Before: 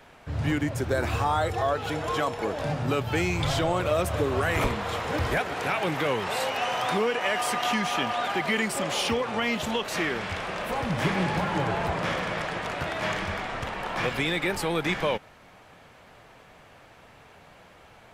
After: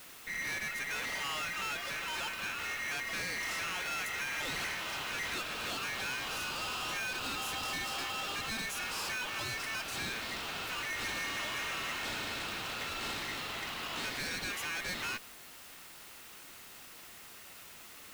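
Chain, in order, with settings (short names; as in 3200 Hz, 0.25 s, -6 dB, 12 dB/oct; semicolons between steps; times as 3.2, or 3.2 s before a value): ring modulator 2000 Hz; tube stage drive 34 dB, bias 0.4; added noise white -53 dBFS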